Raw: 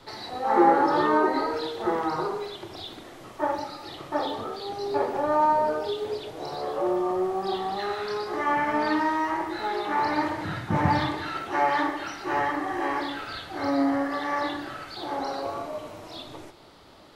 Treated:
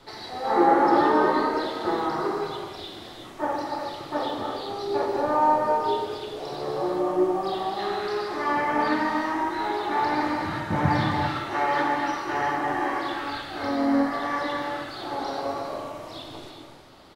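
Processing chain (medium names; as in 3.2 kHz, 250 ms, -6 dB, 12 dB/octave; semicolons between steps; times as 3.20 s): gated-style reverb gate 420 ms flat, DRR 1 dB; harmony voices -3 st -13 dB; trim -1.5 dB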